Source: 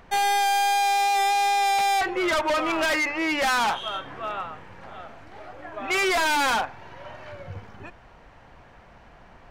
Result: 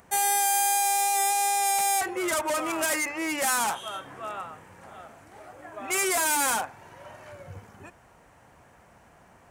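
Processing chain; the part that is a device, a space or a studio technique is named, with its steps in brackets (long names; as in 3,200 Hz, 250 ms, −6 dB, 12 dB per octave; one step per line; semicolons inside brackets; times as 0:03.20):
budget condenser microphone (high-pass filter 73 Hz; high shelf with overshoot 6,100 Hz +14 dB, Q 1.5)
level −4 dB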